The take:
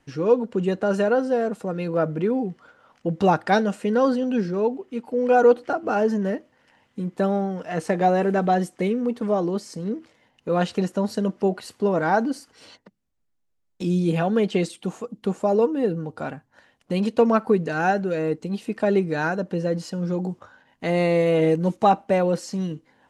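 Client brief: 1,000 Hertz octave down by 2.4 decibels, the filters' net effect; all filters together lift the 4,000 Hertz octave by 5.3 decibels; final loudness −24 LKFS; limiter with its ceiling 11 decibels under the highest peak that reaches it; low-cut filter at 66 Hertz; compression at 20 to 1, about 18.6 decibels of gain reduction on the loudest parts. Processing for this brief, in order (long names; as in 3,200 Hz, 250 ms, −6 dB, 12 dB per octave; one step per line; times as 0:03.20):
high-pass filter 66 Hz
parametric band 1,000 Hz −4 dB
parametric band 4,000 Hz +7 dB
downward compressor 20 to 1, threshold −31 dBFS
level +14.5 dB
brickwall limiter −14 dBFS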